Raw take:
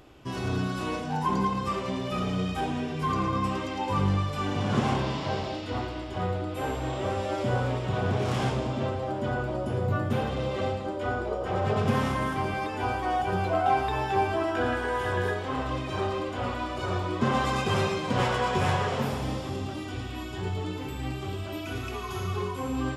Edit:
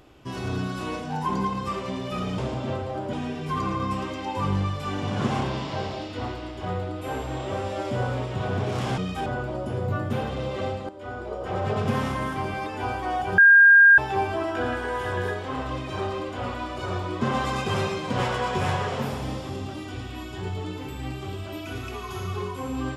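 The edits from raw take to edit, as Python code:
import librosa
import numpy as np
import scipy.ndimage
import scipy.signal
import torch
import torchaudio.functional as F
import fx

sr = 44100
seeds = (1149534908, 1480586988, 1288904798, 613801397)

y = fx.edit(x, sr, fx.swap(start_s=2.38, length_s=0.28, other_s=8.51, other_length_s=0.75),
    fx.fade_in_from(start_s=10.89, length_s=0.64, floor_db=-12.0),
    fx.bleep(start_s=13.38, length_s=0.6, hz=1610.0, db=-9.5), tone=tone)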